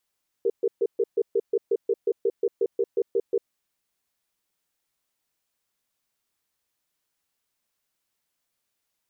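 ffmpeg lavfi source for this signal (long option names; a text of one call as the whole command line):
ffmpeg -f lavfi -i "aevalsrc='0.0794*(sin(2*PI*397*t)+sin(2*PI*464*t))*clip(min(mod(t,0.18),0.05-mod(t,0.18))/0.005,0,1)':duration=3:sample_rate=44100" out.wav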